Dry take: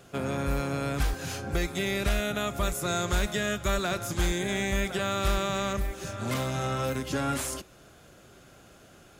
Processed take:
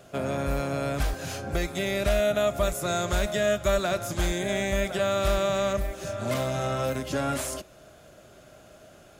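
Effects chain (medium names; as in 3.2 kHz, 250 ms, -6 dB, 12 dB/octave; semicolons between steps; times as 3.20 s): peaking EQ 620 Hz +12 dB 0.24 oct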